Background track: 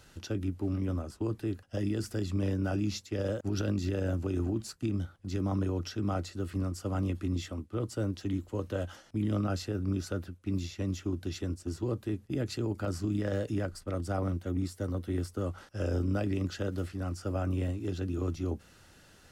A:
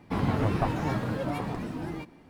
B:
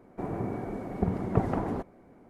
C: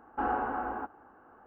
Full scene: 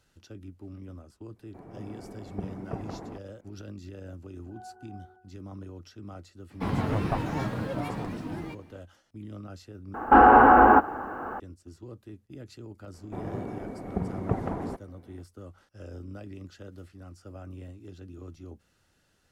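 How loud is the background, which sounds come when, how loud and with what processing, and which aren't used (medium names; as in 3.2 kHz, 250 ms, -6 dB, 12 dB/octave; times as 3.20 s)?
background track -11.5 dB
1.36 s: add B -15 dB + level rider gain up to 6.5 dB
4.32 s: add C -5.5 dB + pitch-class resonator F#, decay 0.48 s
6.50 s: add A -1.5 dB
9.94 s: replace with C -5 dB + loudness maximiser +26.5 dB
12.94 s: add B -2.5 dB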